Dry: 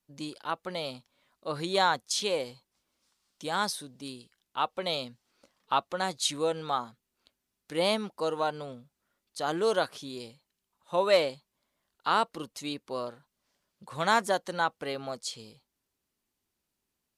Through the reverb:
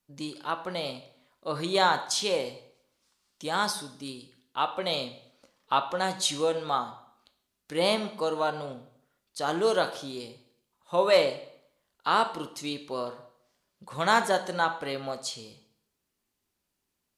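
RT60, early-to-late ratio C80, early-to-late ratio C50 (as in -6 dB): 0.65 s, 15.0 dB, 12.5 dB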